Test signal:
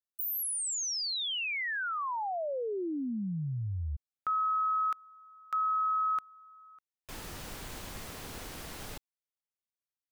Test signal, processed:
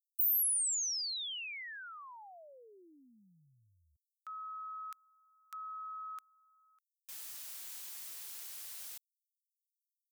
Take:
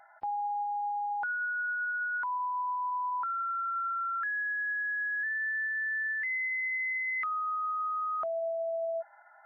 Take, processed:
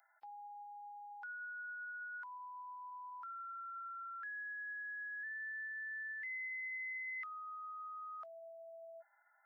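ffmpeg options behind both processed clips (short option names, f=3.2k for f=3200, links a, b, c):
-af "aderivative"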